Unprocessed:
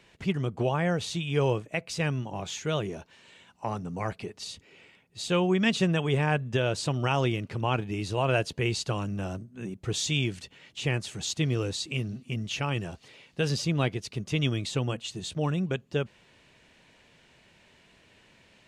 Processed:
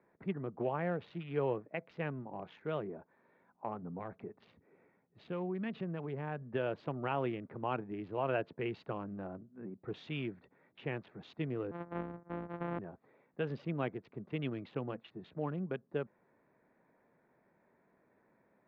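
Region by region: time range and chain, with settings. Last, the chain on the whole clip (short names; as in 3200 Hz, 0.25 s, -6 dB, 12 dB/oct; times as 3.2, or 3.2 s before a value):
3.82–6.42 bell 70 Hz +5 dB 3 oct + compressor 2.5:1, threshold -29 dBFS
11.71–12.79 sample sorter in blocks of 256 samples + LPF 1900 Hz + upward compressor, threshold -41 dBFS
whole clip: Wiener smoothing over 15 samples; LPF 3900 Hz 24 dB/oct; three-band isolator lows -17 dB, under 160 Hz, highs -19 dB, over 2400 Hz; gain -6.5 dB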